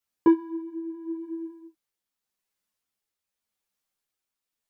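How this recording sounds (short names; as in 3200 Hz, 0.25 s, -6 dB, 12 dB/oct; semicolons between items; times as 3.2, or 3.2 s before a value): tremolo triangle 0.86 Hz, depth 40%; a shimmering, thickened sound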